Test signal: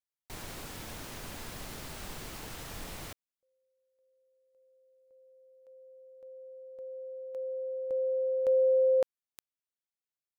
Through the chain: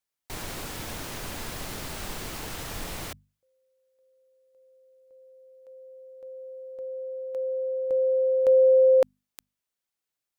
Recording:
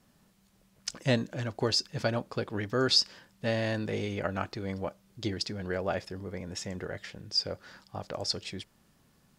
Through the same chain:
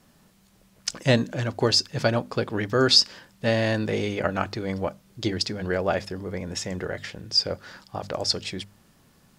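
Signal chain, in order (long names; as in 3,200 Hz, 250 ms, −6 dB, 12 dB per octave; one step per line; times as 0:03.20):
mains-hum notches 50/100/150/200/250 Hz
level +7 dB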